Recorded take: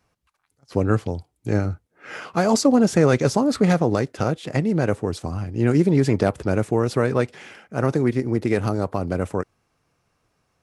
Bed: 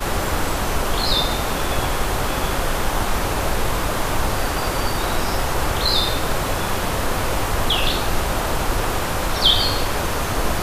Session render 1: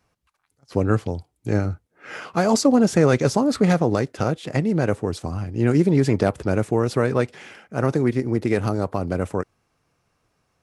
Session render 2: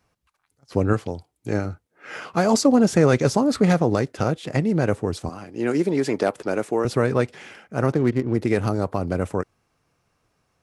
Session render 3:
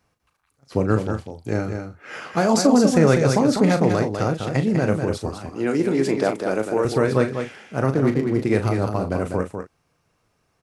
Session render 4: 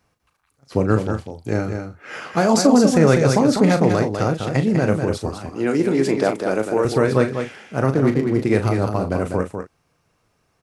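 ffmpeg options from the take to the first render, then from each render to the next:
-af anull
-filter_complex "[0:a]asettb=1/sr,asplit=3[a][b][c];[a]atrim=end=0.934[d];[b]atrim=start=0.93:end=2.16,asetpts=PTS-STARTPTS,afade=t=in:d=0.004:c=qsin,afade=t=out:st=1.226:d=0.004:c=qsin,lowshelf=f=170:g=-7.5[e];[c]atrim=start=2.156[f];[d][e]acrossfade=d=0.004:c1=hsin:c2=qsin[g];[g][f]acrossfade=d=0.004:c1=qsin:c2=hsin,asettb=1/sr,asplit=3[h][i][j];[h]atrim=end=5.294[k];[i]atrim=start=5.29:end=6.85,asetpts=PTS-STARTPTS,afade=t=in:d=0.004:c=qsin,afade=t=out:st=1.556:d=0.004:c=qsin,highpass=290[l];[j]atrim=start=6.846[m];[k][l]acrossfade=d=0.004:c1=hsin:c2=qsin[n];[n][m]acrossfade=d=0.004:c1=qsin:c2=hsin,asettb=1/sr,asplit=3[o][p][q];[o]atrim=end=7.924[r];[p]atrim=start=7.92:end=8.34,asetpts=PTS-STARTPTS,afade=t=in:d=0.004:c=qsin,afade=t=out:st=0.416:d=0.004:c=qsin,adynamicsmooth=sensitivity=6:basefreq=870[s];[q]atrim=start=8.336[t];[r][s]acrossfade=d=0.004:c1=hsin:c2=qsin[u];[u][t]acrossfade=d=0.004:c1=qsin:c2=hsin"
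-filter_complex "[0:a]asplit=2[a][b];[b]adelay=37,volume=-9dB[c];[a][c]amix=inputs=2:normalize=0,aecho=1:1:199:0.473"
-af "volume=2dB,alimiter=limit=-2dB:level=0:latency=1"

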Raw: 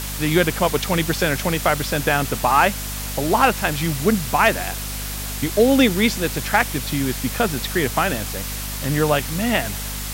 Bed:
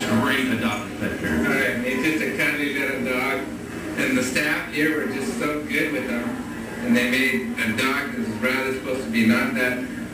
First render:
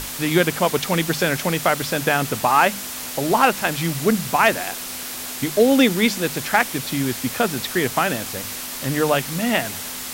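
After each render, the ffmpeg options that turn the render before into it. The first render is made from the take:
-af "bandreject=f=50:t=h:w=6,bandreject=f=100:t=h:w=6,bandreject=f=150:t=h:w=6,bandreject=f=200:t=h:w=6"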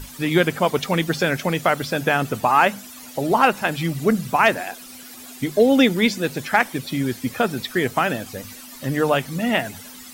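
-af "afftdn=nr=14:nf=-31"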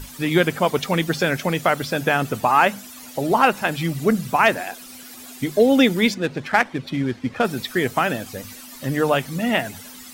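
-filter_complex "[0:a]asettb=1/sr,asplit=3[a][b][c];[a]atrim=end=6.144[d];[b]atrim=start=6.14:end=7.45,asetpts=PTS-STARTPTS,afade=t=in:d=0.004:c=qsin,afade=t=out:st=1.306:d=0.004:c=qsin,adynamicsmooth=sensitivity=3.5:basefreq=2.5k[e];[c]atrim=start=7.446[f];[d][e]acrossfade=d=0.004:c1=hsin:c2=qsin[g];[g][f]acrossfade=d=0.004:c1=qsin:c2=hsin"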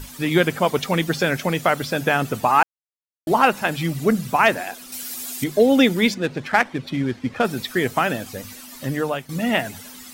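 -filter_complex "[0:a]asettb=1/sr,asplit=3[a][b][c];[a]atrim=end=4.924[d];[b]atrim=start=4.92:end=5.44,asetpts=PTS-STARTPTS,afade=t=in:d=0.004:c=qsin,afade=t=out:st=0.516:d=0.004:c=qsin,highshelf=f=3.5k:g=11[e];[c]atrim=start=5.436[f];[d][e]acrossfade=d=0.004:c1=hsin:c2=qsin[g];[g][f]acrossfade=d=0.004:c1=qsin:c2=hsin,asplit=4[h][i][j][k];[h]atrim=end=2.63,asetpts=PTS-STARTPTS,afade=t=out:st=2.626:d=0.004:c=hsin[l];[i]atrim=start=2.63:end=3.27,asetpts=PTS-STARTPTS,volume=0[m];[j]atrim=start=3.27:end=9.29,asetpts=PTS-STARTPTS,afade=t=in:d=0.004:c=hsin,afade=t=out:st=5.56:d=0.46:silence=0.211349[n];[k]atrim=start=9.29,asetpts=PTS-STARTPTS,afade=t=in:d=0.004:c=hsin:silence=0.211349[o];[l][m][n][o]concat=n=4:v=0:a=1"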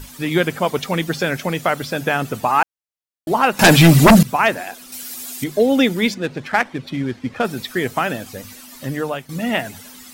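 -filter_complex "[0:a]asettb=1/sr,asplit=3[a][b][c];[a]atrim=end=3.594[d];[b]atrim=start=3.59:end=4.23,asetpts=PTS-STARTPTS,afade=t=in:d=0.004:c=qsin,afade=t=out:st=0.636:d=0.004:c=qsin,aeval=exprs='0.631*sin(PI/2*5.01*val(0)/0.631)':c=same[e];[c]atrim=start=4.226[f];[d][e]acrossfade=d=0.004:c1=hsin:c2=qsin[g];[g][f]acrossfade=d=0.004:c1=qsin:c2=hsin"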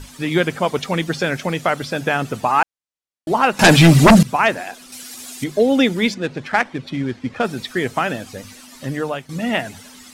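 -af "lowpass=9.6k"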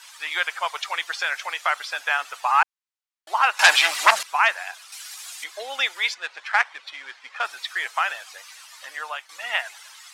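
-af "highpass=f=920:w=0.5412,highpass=f=920:w=1.3066,highshelf=f=8.2k:g=-7.5"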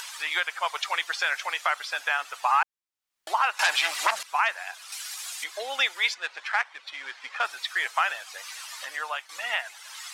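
-af "acompressor=mode=upward:threshold=-32dB:ratio=2.5,alimiter=limit=-12dB:level=0:latency=1:release=426"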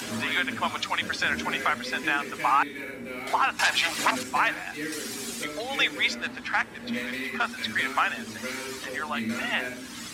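-filter_complex "[1:a]volume=-13dB[a];[0:a][a]amix=inputs=2:normalize=0"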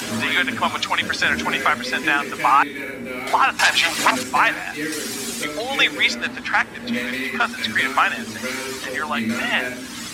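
-af "volume=7dB"

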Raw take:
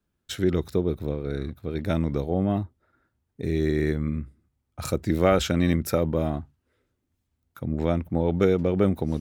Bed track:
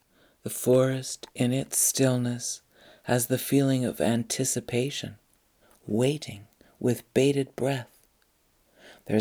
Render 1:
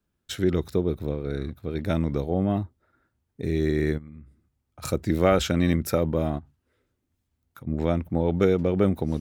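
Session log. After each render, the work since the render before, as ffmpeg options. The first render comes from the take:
-filter_complex "[0:a]asplit=3[a][b][c];[a]afade=t=out:st=3.97:d=0.02[d];[b]acompressor=threshold=-45dB:ratio=3:attack=3.2:release=140:knee=1:detection=peak,afade=t=in:st=3.97:d=0.02,afade=t=out:st=4.82:d=0.02[e];[c]afade=t=in:st=4.82:d=0.02[f];[d][e][f]amix=inputs=3:normalize=0,asplit=3[g][h][i];[g]afade=t=out:st=6.38:d=0.02[j];[h]acompressor=threshold=-39dB:ratio=6:attack=3.2:release=140:knee=1:detection=peak,afade=t=in:st=6.38:d=0.02,afade=t=out:st=7.66:d=0.02[k];[i]afade=t=in:st=7.66:d=0.02[l];[j][k][l]amix=inputs=3:normalize=0"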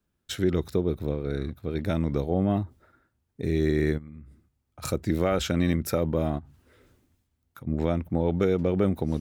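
-af "alimiter=limit=-12dB:level=0:latency=1:release=237,areverse,acompressor=mode=upward:threshold=-46dB:ratio=2.5,areverse"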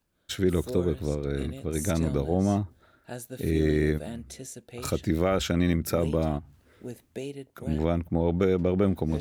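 -filter_complex "[1:a]volume=-14dB[a];[0:a][a]amix=inputs=2:normalize=0"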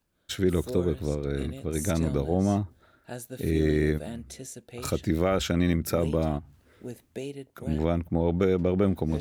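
-af anull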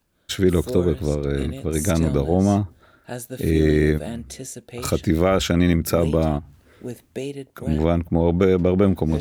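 -af "volume=6.5dB"

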